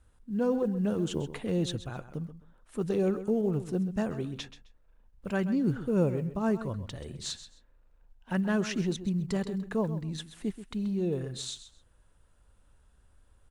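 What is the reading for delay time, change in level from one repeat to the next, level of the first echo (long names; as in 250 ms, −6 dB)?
131 ms, −13.5 dB, −13.0 dB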